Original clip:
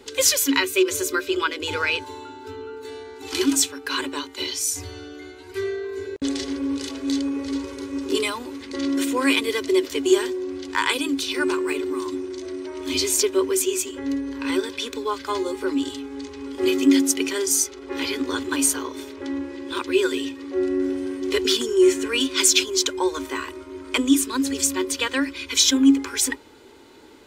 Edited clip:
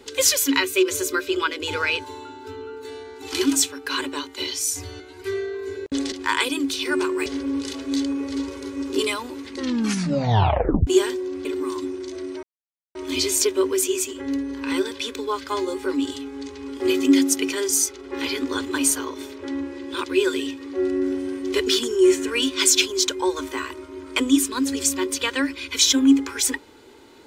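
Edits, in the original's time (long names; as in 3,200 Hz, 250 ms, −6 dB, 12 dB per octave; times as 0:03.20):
0:05.00–0:05.30: remove
0:08.73: tape stop 1.30 s
0:10.61–0:11.75: move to 0:06.42
0:12.73: splice in silence 0.52 s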